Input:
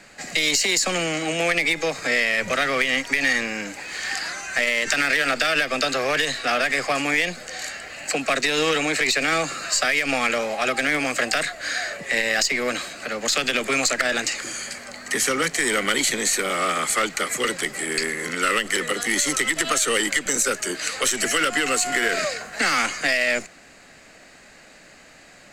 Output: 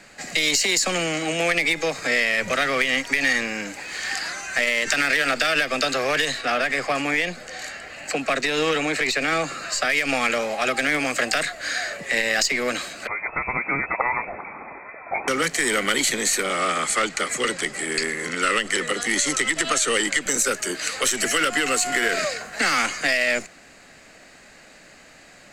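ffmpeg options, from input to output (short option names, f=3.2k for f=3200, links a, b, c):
-filter_complex "[0:a]asettb=1/sr,asplit=3[a][b][c];[a]atrim=end=6.414[d];[b]atrim=start=6.41:end=9.9,asetpts=PTS-STARTPTS,afade=t=in:d=0.004:c=qsin,afade=t=out:st=3.486:d=0.004:c=qsin,highshelf=f=3.7k:g=-6[e];[c]atrim=start=9.896[f];[d][e]acrossfade=d=0.004:c1=hsin:c2=qsin[g];[g][f]acrossfade=d=0.004:c1=qsin:c2=hsin,asettb=1/sr,asplit=3[h][i][j];[h]atrim=end=13.074[k];[i]atrim=start=13.07:end=15.28,asetpts=PTS-STARTPTS,afade=t=in:d=0.004:c=qsin,afade=t=out:st=2.206:d=0.004:c=qsin,lowpass=f=2.2k:t=q:w=0.5098,lowpass=f=2.2k:t=q:w=0.6013,lowpass=f=2.2k:t=q:w=0.9,lowpass=f=2.2k:t=q:w=2.563,afreqshift=-2600[l];[j]atrim=start=15.276[m];[k][l]acrossfade=d=0.004:c1=hsin:c2=qsin[n];[n][m]acrossfade=d=0.004:c1=qsin:c2=hsin,asettb=1/sr,asplit=3[o][p][q];[o]atrim=end=16.434[r];[p]atrim=start=16.43:end=20.22,asetpts=PTS-STARTPTS,afade=t=in:d=0.004:c=qsin,afade=t=out:st=3.786:d=0.004:c=qsin,lowpass=f=10k:w=0.5412,lowpass=f=10k:w=1.3066[s];[q]atrim=start=20.216[t];[r][s]acrossfade=d=0.004:c1=hsin:c2=qsin[u];[u][t]acrossfade=d=0.004:c1=qsin:c2=hsin"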